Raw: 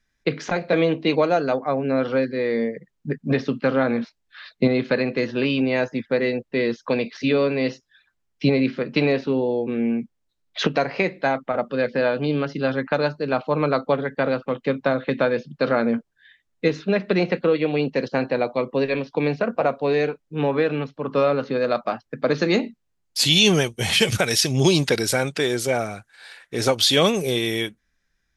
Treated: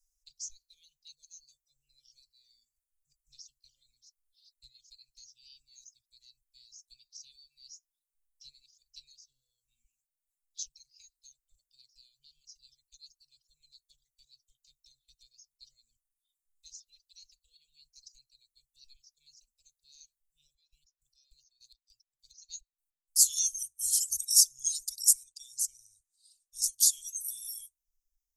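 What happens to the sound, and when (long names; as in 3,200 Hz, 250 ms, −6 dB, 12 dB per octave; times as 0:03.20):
0:09.84–0:10.66: low-shelf EQ 340 Hz −7 dB
0:20.43–0:23.18: square-wave tremolo 3.4 Hz, depth 65%, duty 40%
0:25.24–0:26.64: high-shelf EQ 9,700 Hz −10 dB
whole clip: inverse Chebyshev band-stop filter 170–1,700 Hz, stop band 70 dB; reverb reduction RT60 1.9 s; drawn EQ curve 100 Hz 0 dB, 1,700 Hz −7 dB, 6,400 Hz +11 dB; level −4 dB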